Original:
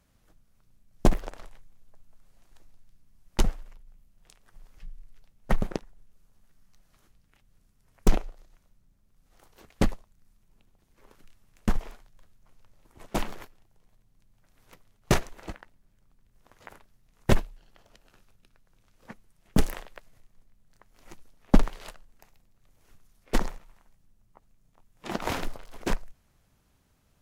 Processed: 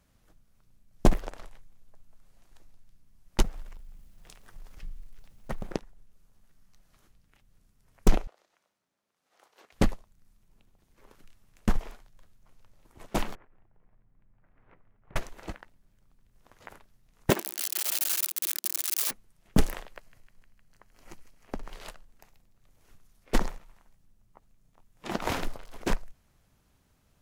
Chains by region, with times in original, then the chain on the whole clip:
3.42–5.73 s: companding laws mixed up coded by mu + compression 5:1, threshold -30 dBFS
8.27–9.72 s: high-pass 480 Hz + treble shelf 8.9 kHz -11.5 dB
13.35–15.16 s: low-pass 2.1 kHz 24 dB/octave + compression 8:1, threshold -52 dBFS
17.30–19.11 s: zero-crossing glitches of -16.5 dBFS + high-pass 240 Hz 24 dB/octave + peaking EQ 350 Hz +7 dB 0.26 oct
19.90–21.72 s: band-stop 3.6 kHz, Q 11 + compression 16:1, threshold -30 dBFS + feedback echo behind a high-pass 154 ms, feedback 76%, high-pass 1.6 kHz, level -12.5 dB
whole clip: none

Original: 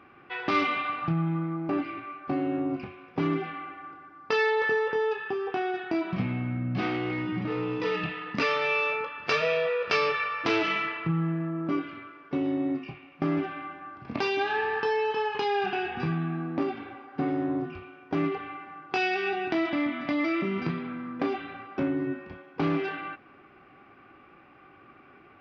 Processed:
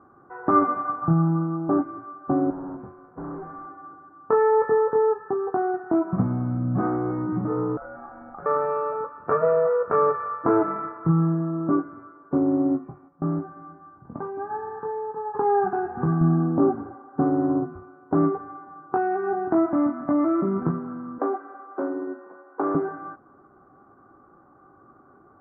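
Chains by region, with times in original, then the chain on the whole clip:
2.50–3.66 s: CVSD coder 16 kbps + hard clipper -34.5 dBFS
7.77–8.46 s: compression 4:1, threshold -33 dBFS + ring modulator 1 kHz
13.08–15.34 s: bass shelf 130 Hz +7 dB + feedback comb 170 Hz, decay 0.19 s, harmonics odd + delay 353 ms -21 dB
16.21–16.92 s: tilt EQ -2 dB/octave + transient shaper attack -6 dB, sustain +2 dB
21.18–22.75 s: high-pass 330 Hz 24 dB/octave + treble shelf 3.2 kHz +7 dB + tape noise reduction on one side only encoder only
whole clip: steep low-pass 1.4 kHz 48 dB/octave; upward expansion 1.5:1, over -38 dBFS; trim +8.5 dB

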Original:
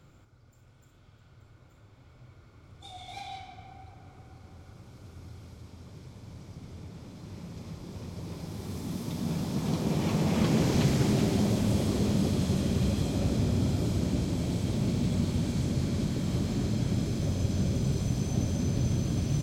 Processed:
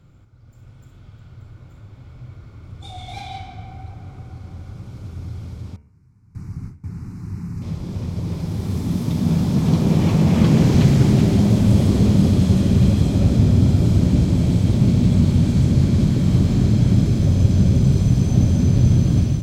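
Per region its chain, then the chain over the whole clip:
5.76–7.62 s: gate with hold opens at -35 dBFS, closes at -47 dBFS + static phaser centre 1.4 kHz, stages 4
whole clip: tone controls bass +8 dB, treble -3 dB; de-hum 71.95 Hz, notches 39; level rider gain up to 8 dB

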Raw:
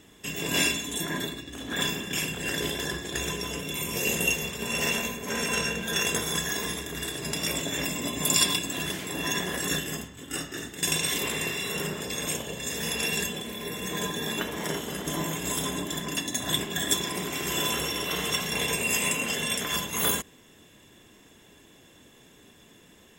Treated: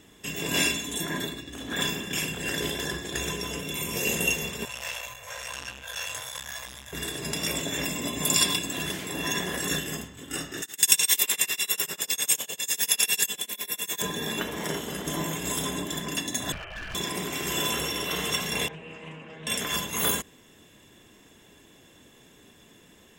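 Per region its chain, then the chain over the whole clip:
4.65–6.93 s: Chebyshev band-stop 130–520 Hz, order 4 + chorus 1 Hz, delay 15.5 ms, depth 7.2 ms + transformer saturation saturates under 2.6 kHz
10.62–14.02 s: tilt EQ +4 dB/octave + tremolo 10 Hz, depth 98%
16.52–16.95 s: high-pass 690 Hz + frequency inversion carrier 3.4 kHz + hard clipper -34 dBFS
18.68–19.47 s: low-pass 1.8 kHz + feedback comb 160 Hz, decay 0.24 s, mix 90% + loudspeaker Doppler distortion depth 0.15 ms
whole clip: none

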